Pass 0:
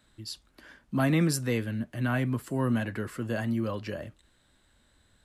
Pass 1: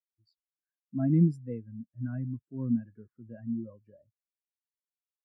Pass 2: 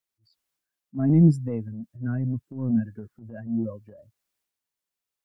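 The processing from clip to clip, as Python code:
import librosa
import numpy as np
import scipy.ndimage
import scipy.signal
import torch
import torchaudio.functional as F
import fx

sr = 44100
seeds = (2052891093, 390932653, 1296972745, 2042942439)

y1 = fx.spectral_expand(x, sr, expansion=2.5)
y2 = fx.transient(y1, sr, attack_db=-10, sustain_db=6)
y2 = y2 * librosa.db_to_amplitude(8.0)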